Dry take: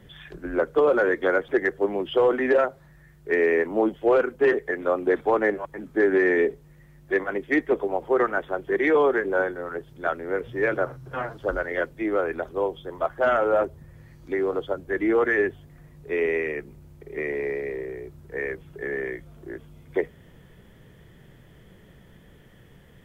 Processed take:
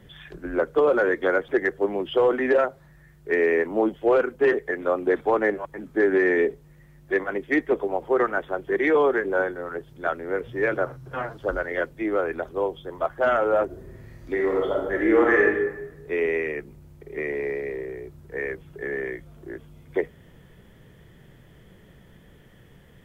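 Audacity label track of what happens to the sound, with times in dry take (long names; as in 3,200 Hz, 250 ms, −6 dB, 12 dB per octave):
13.650000	15.450000	thrown reverb, RT60 1 s, DRR −1.5 dB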